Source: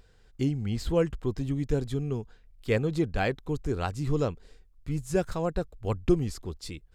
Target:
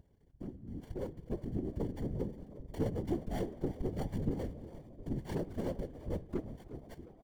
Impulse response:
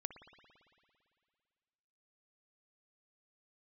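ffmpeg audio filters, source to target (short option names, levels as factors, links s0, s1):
-filter_complex "[0:a]aeval=exprs='if(lt(val(0),0),0.251*val(0),val(0))':c=same,equalizer=f=250:t=o:w=1:g=7,equalizer=f=2000:t=o:w=1:g=-8,equalizer=f=8000:t=o:w=1:g=5,acrossover=split=840[s0][s1];[s1]acrusher=samples=33:mix=1:aa=0.000001[s2];[s0][s2]amix=inputs=2:normalize=0,asetrate=42336,aresample=44100,flanger=delay=0.2:depth=9.8:regen=-74:speed=0.74:shape=sinusoidal,acompressor=threshold=0.00355:ratio=3,aeval=exprs='0.0141*(cos(1*acos(clip(val(0)/0.0141,-1,1)))-cos(1*PI/2))+0.00126*(cos(3*acos(clip(val(0)/0.0141,-1,1)))-cos(3*PI/2))':c=same,dynaudnorm=f=270:g=9:m=3.55,asplit=2[s3][s4];[1:a]atrim=start_sample=2205,afade=t=out:st=0.4:d=0.01,atrim=end_sample=18081[s5];[s4][s5]afir=irnorm=-1:irlink=0,volume=0.562[s6];[s3][s6]amix=inputs=2:normalize=0,afftfilt=real='hypot(re,im)*cos(2*PI*random(0))':imag='hypot(re,im)*sin(2*PI*random(1))':win_size=512:overlap=0.75,asplit=6[s7][s8][s9][s10][s11][s12];[s8]adelay=356,afreqshift=62,volume=0.15[s13];[s9]adelay=712,afreqshift=124,volume=0.0822[s14];[s10]adelay=1068,afreqshift=186,volume=0.0452[s15];[s11]adelay=1424,afreqshift=248,volume=0.0248[s16];[s12]adelay=1780,afreqshift=310,volume=0.0136[s17];[s7][s13][s14][s15][s16][s17]amix=inputs=6:normalize=0,volume=1.88"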